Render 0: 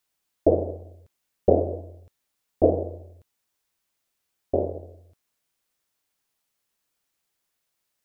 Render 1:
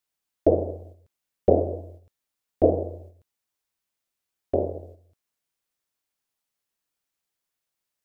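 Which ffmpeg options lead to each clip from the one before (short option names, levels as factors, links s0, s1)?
-af "agate=range=0.501:threshold=0.00562:ratio=16:detection=peak"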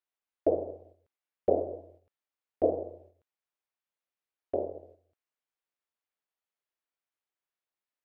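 -af "bass=f=250:g=-12,treble=f=4000:g=-13,volume=0.531"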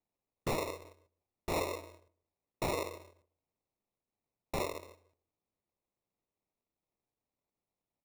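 -filter_complex "[0:a]acrusher=samples=28:mix=1:aa=0.000001,aeval=exprs='0.0447*(abs(mod(val(0)/0.0447+3,4)-2)-1)':c=same,asplit=2[s0][s1];[s1]adelay=151,lowpass=f=820:p=1,volume=0.0944,asplit=2[s2][s3];[s3]adelay=151,lowpass=f=820:p=1,volume=0.26[s4];[s0][s2][s4]amix=inputs=3:normalize=0"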